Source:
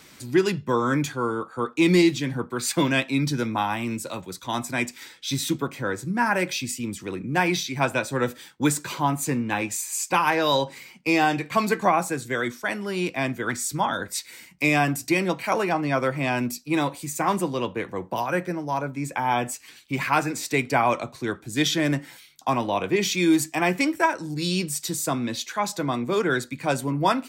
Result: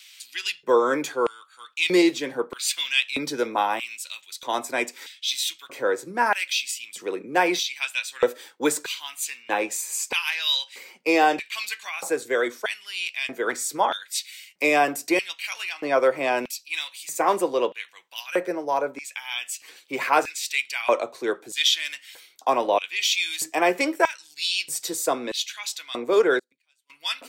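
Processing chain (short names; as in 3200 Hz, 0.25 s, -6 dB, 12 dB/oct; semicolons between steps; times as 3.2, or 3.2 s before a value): LFO high-pass square 0.79 Hz 460–2900 Hz; 26.39–26.9 flipped gate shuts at -28 dBFS, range -37 dB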